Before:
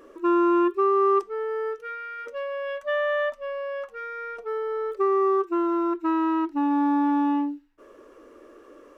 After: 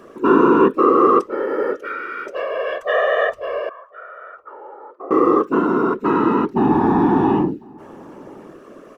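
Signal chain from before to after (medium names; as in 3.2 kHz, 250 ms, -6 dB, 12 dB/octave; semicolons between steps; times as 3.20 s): whisper effect; 3.69–5.11 s: auto-wah 680–1500 Hz, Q 8.1, down, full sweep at -21.5 dBFS; echo from a far wall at 180 m, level -25 dB; trim +7 dB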